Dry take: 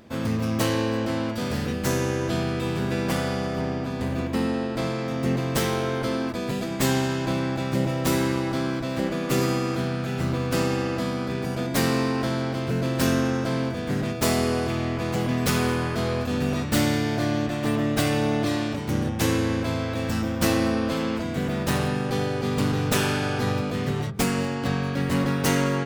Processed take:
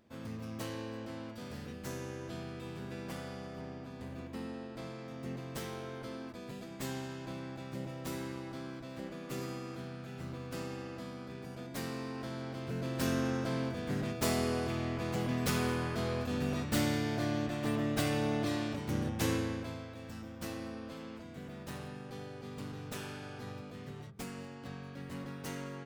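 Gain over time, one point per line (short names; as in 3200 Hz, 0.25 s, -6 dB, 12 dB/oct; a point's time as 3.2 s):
11.99 s -17 dB
13.31 s -9 dB
19.33 s -9 dB
19.95 s -19.5 dB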